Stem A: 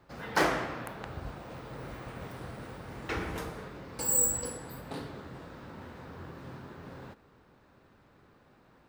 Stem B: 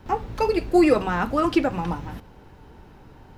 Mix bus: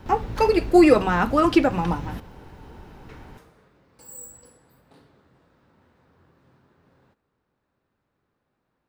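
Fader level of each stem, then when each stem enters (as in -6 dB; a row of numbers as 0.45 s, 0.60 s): -15.0 dB, +3.0 dB; 0.00 s, 0.00 s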